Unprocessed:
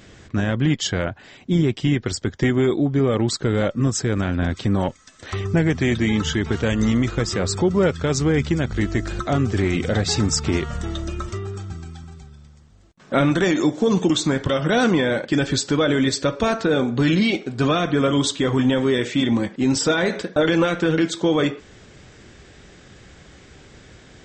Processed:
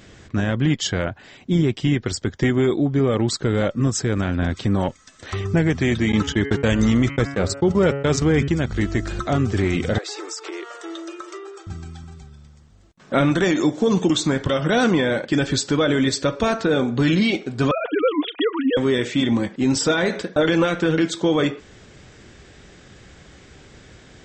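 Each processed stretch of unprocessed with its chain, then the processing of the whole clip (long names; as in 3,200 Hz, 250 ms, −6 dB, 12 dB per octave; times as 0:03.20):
0:06.12–0:08.48: noise gate −22 dBFS, range −42 dB + hum removal 139.5 Hz, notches 22 + envelope flattener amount 50%
0:09.98–0:11.67: Chebyshev high-pass with heavy ripple 320 Hz, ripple 3 dB + downward compressor, threshold −28 dBFS
0:17.71–0:18.77: three sine waves on the formant tracks + high-pass filter 360 Hz + comb filter 4.2 ms, depth 53%
whole clip: no processing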